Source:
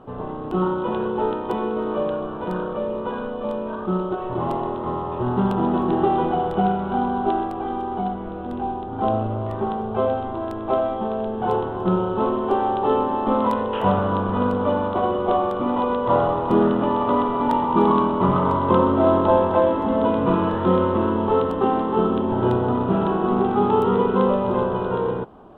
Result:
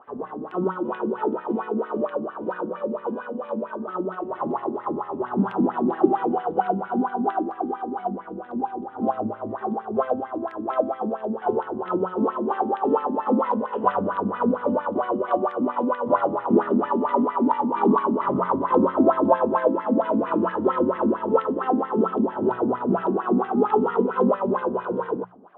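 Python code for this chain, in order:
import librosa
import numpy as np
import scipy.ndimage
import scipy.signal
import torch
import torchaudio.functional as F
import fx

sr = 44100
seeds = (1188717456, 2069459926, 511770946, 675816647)

y = fx.wah_lfo(x, sr, hz=4.4, low_hz=220.0, high_hz=2000.0, q=4.5)
y = fx.hum_notches(y, sr, base_hz=60, count=3)
y = F.gain(torch.from_numpy(y), 7.5).numpy()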